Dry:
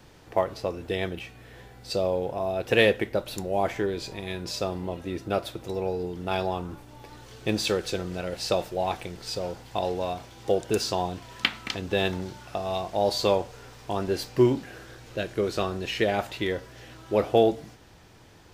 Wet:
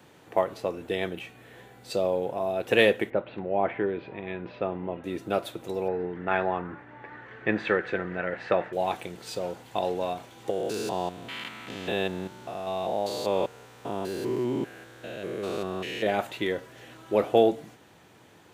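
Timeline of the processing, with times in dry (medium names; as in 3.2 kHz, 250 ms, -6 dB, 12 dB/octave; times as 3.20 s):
3.10–5.04 s: inverse Chebyshev low-pass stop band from 8.1 kHz, stop band 60 dB
5.88–8.73 s: resonant low-pass 1.8 kHz, resonance Q 4.5
10.50–16.07 s: spectrogram pixelated in time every 200 ms
whole clip: high-pass 150 Hz 12 dB/octave; peaking EQ 5.1 kHz -8 dB 0.49 oct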